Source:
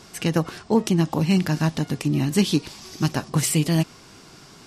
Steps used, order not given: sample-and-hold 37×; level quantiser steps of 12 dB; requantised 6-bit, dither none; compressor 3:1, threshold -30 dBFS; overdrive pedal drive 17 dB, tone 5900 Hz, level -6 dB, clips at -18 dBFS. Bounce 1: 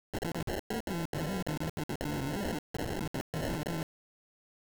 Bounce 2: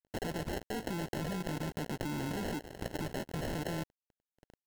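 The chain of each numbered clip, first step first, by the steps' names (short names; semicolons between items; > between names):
overdrive pedal > sample-and-hold > compressor > level quantiser > requantised; requantised > compressor > overdrive pedal > sample-and-hold > level quantiser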